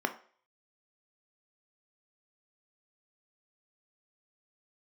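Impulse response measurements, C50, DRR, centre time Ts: 13.5 dB, 6.5 dB, 8 ms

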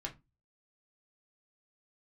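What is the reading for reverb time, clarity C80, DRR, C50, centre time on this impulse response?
0.20 s, 25.0 dB, -0.5 dB, 16.5 dB, 11 ms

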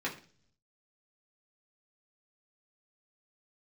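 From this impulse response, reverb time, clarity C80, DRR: 0.45 s, 16.0 dB, -5.0 dB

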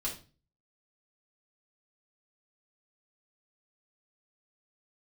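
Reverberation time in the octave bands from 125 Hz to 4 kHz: 0.55 s, 0.45 s, 0.35 s, 0.35 s, 0.30 s, 0.30 s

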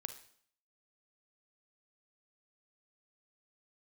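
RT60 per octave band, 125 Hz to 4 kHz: 0.60 s, 0.60 s, 0.60 s, 0.60 s, 0.60 s, 0.60 s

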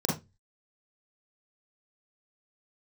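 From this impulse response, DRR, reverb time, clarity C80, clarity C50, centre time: -3.5 dB, 0.20 s, 15.5 dB, 4.5 dB, 36 ms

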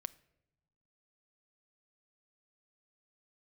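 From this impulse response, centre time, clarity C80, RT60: 2 ms, 23.5 dB, no single decay rate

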